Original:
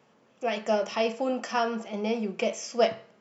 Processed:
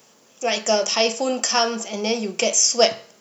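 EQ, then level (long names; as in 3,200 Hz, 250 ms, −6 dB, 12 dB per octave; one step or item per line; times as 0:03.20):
bass and treble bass −8 dB, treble +12 dB
low-shelf EQ 300 Hz +5.5 dB
high-shelf EQ 4,300 Hz +11.5 dB
+4.5 dB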